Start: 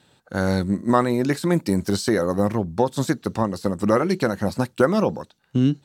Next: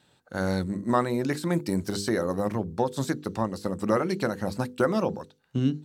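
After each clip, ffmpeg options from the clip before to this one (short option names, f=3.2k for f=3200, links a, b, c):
-af "bandreject=f=50:t=h:w=6,bandreject=f=100:t=h:w=6,bandreject=f=150:t=h:w=6,bandreject=f=200:t=h:w=6,bandreject=f=250:t=h:w=6,bandreject=f=300:t=h:w=6,bandreject=f=350:t=h:w=6,bandreject=f=400:t=h:w=6,bandreject=f=450:t=h:w=6,bandreject=f=500:t=h:w=6,volume=-5dB"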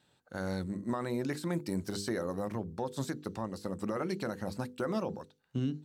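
-af "alimiter=limit=-17dB:level=0:latency=1:release=48,volume=-6.5dB"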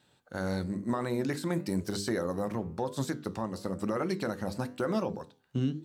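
-af "flanger=delay=8.4:depth=6.4:regen=-83:speed=1:shape=triangular,volume=7.5dB"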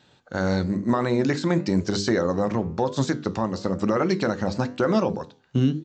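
-af "aresample=16000,aresample=44100,volume=9dB"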